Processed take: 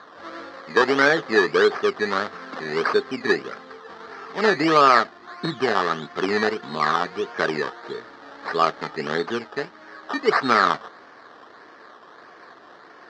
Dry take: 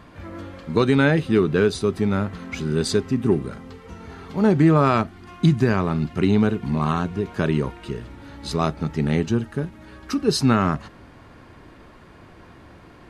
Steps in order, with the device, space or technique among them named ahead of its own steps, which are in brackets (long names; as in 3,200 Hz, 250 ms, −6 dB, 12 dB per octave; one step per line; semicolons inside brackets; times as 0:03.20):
circuit-bent sampling toy (sample-and-hold swept by an LFO 16×, swing 60% 1.6 Hz; loudspeaker in its box 410–5,000 Hz, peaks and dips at 440 Hz +5 dB, 730 Hz +4 dB, 1,200 Hz +9 dB, 1,700 Hz +9 dB, 2,600 Hz −6 dB, 4,300 Hz +4 dB)